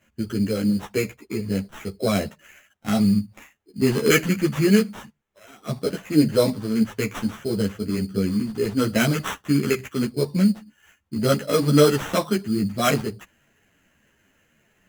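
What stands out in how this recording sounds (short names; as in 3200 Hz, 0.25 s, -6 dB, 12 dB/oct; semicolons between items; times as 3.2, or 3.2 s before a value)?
aliases and images of a low sample rate 4600 Hz, jitter 0%; a shimmering, thickened sound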